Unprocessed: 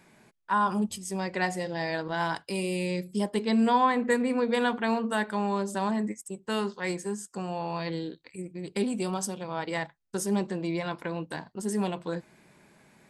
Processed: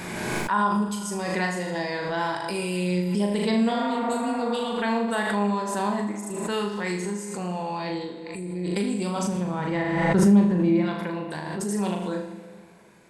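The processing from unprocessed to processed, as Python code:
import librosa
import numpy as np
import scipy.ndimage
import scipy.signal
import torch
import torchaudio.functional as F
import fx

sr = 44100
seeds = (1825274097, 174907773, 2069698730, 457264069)

y = fx.spec_repair(x, sr, seeds[0], start_s=3.72, length_s=0.97, low_hz=480.0, high_hz=2500.0, source='both')
y = fx.bass_treble(y, sr, bass_db=11, treble_db=-14, at=(9.22, 10.84), fade=0.02)
y = fx.room_flutter(y, sr, wall_m=6.7, rt60_s=0.53)
y = fx.rev_plate(y, sr, seeds[1], rt60_s=2.3, hf_ratio=0.8, predelay_ms=0, drr_db=10.5)
y = fx.pre_swell(y, sr, db_per_s=27.0)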